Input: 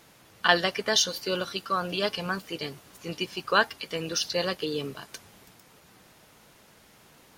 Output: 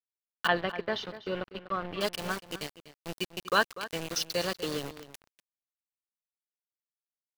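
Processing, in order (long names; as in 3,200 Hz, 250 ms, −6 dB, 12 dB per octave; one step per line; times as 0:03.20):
low-shelf EQ 160 Hz +4 dB
centre clipping without the shift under −29.5 dBFS
0:00.47–0:02.01: high-frequency loss of the air 410 metres
slap from a distant wall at 42 metres, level −14 dB
level −3 dB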